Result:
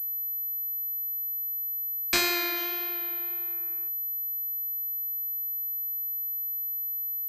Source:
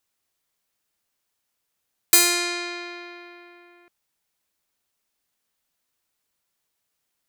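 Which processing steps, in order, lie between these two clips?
2.56–3.52 s: formants flattened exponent 0.6; flange 1.7 Hz, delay 5.1 ms, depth 9.6 ms, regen -51%; class-D stage that switches slowly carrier 12 kHz

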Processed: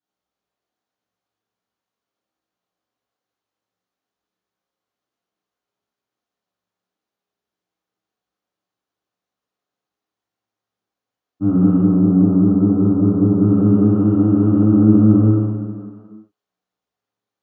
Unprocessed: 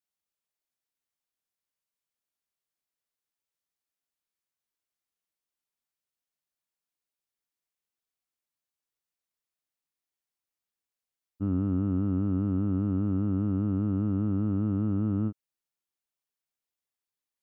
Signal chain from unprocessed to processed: 11.80–13.41 s: low-pass 1.1 kHz 12 dB/octave; reverberation RT60 2.2 s, pre-delay 3 ms, DRR -12.5 dB; trim -8 dB

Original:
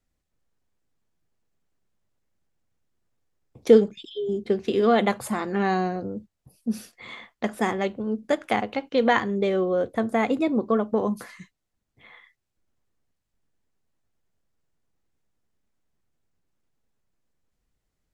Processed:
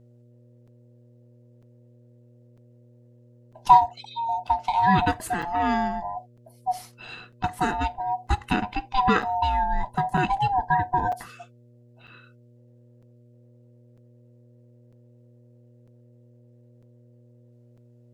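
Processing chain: split-band scrambler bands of 500 Hz; mains buzz 120 Hz, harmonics 5, -54 dBFS -7 dB/octave; crackling interface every 0.95 s, samples 256, zero, from 0.67 s

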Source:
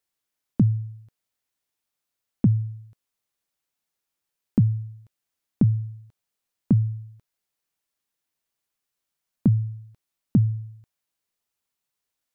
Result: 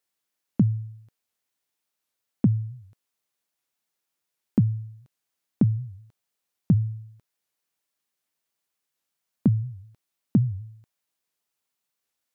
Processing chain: high-pass 130 Hz 6 dB/octave; warped record 78 rpm, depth 250 cents; trim +1 dB

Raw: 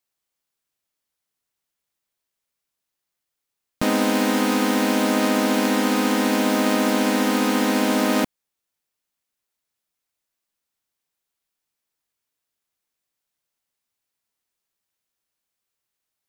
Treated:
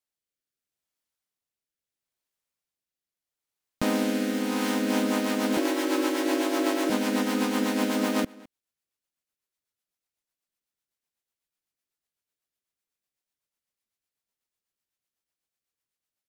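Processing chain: echo from a far wall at 36 m, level -22 dB; rotary cabinet horn 0.75 Hz, later 8 Hz, at 4.43 s; 5.57–6.90 s: frequency shift +59 Hz; trim -4 dB

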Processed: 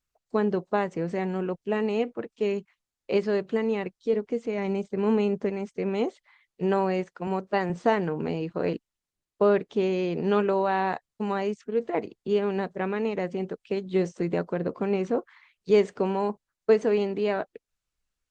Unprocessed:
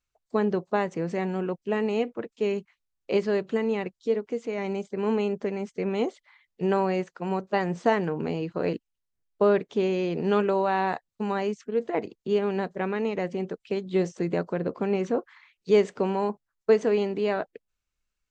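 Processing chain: 4.13–5.50 s: bass shelf 220 Hz +6.5 dB; 7.27–7.70 s: high-pass 130 Hz 12 dB/octave; Opus 24 kbps 48 kHz

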